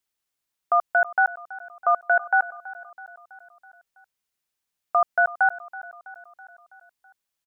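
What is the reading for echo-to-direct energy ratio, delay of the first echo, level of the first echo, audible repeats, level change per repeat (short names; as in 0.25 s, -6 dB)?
-16.0 dB, 0.327 s, -18.0 dB, 4, -4.5 dB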